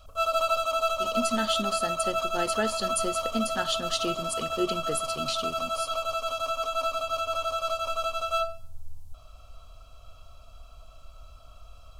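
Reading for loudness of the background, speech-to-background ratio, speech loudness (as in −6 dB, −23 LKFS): −29.0 LKFS, −3.0 dB, −32.0 LKFS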